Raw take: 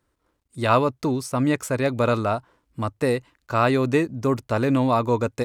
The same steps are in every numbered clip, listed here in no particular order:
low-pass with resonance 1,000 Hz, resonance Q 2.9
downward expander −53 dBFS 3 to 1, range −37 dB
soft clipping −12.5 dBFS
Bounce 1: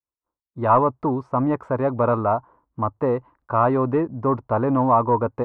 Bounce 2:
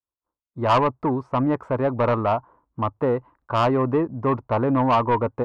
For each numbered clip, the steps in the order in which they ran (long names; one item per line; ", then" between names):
soft clipping, then low-pass with resonance, then downward expander
low-pass with resonance, then downward expander, then soft clipping